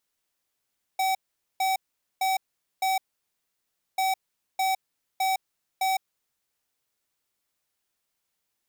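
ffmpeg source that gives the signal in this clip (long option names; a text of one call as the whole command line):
ffmpeg -f lavfi -i "aevalsrc='0.0596*(2*lt(mod(762*t,1),0.5)-1)*clip(min(mod(mod(t,2.99),0.61),0.16-mod(mod(t,2.99),0.61))/0.005,0,1)*lt(mod(t,2.99),2.44)':duration=5.98:sample_rate=44100" out.wav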